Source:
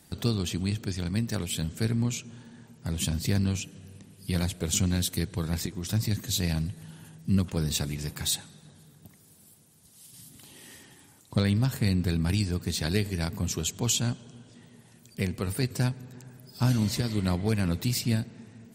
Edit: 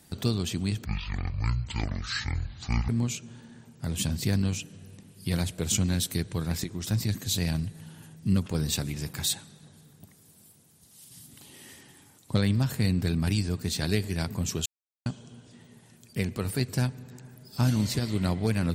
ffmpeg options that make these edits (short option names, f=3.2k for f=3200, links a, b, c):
-filter_complex "[0:a]asplit=5[a][b][c][d][e];[a]atrim=end=0.854[f];[b]atrim=start=0.85:end=1.91,asetpts=PTS-STARTPTS,asetrate=22932,aresample=44100,atrim=end_sample=89896,asetpts=PTS-STARTPTS[g];[c]atrim=start=1.906:end=13.68,asetpts=PTS-STARTPTS,afade=t=out:st=11.77:d=0.004:c=hsin[h];[d]atrim=start=13.68:end=14.08,asetpts=PTS-STARTPTS,volume=0[i];[e]atrim=start=14.08,asetpts=PTS-STARTPTS,afade=t=in:d=0.004:c=hsin[j];[f][g]acrossfade=d=0.004:c1=hsin:c2=hsin[k];[h][i][j]concat=n=3:v=0:a=1[l];[k][l]acrossfade=d=0.004:c1=hsin:c2=hsin"